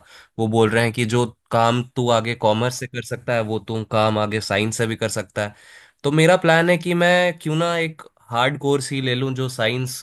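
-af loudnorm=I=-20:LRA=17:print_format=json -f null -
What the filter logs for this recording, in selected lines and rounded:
"input_i" : "-20.4",
"input_tp" : "-1.8",
"input_lra" : "3.1",
"input_thresh" : "-30.5",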